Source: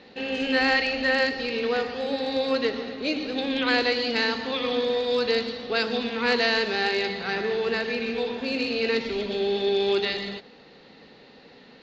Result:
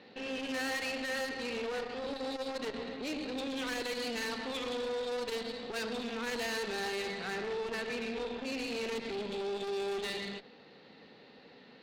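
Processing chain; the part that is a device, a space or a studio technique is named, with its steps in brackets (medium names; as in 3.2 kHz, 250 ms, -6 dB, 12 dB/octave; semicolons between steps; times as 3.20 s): valve radio (band-pass 90–5400 Hz; valve stage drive 29 dB, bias 0.55; transformer saturation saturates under 240 Hz); trim -3 dB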